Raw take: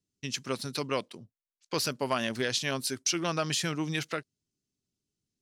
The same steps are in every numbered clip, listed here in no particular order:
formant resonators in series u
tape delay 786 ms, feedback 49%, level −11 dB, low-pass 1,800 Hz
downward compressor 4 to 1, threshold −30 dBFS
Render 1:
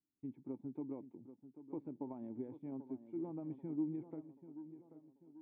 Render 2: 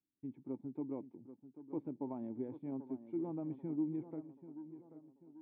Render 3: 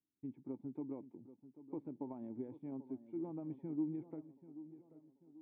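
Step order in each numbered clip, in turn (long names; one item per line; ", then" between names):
downward compressor, then formant resonators in series, then tape delay
formant resonators in series, then downward compressor, then tape delay
downward compressor, then tape delay, then formant resonators in series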